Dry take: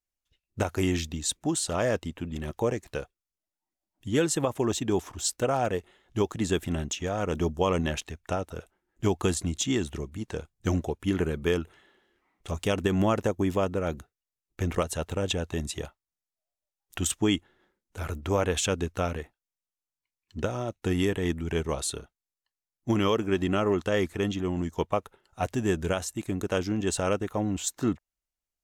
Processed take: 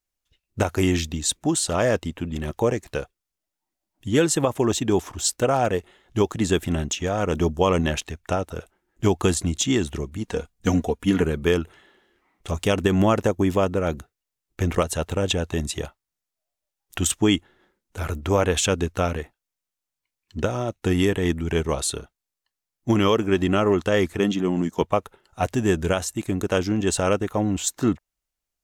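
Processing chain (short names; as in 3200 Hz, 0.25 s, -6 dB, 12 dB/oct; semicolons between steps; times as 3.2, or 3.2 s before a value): 10.24–11.23 comb 4.2 ms, depth 59%; 24.19–24.82 resonant low shelf 130 Hz -10.5 dB, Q 1.5; gain +5.5 dB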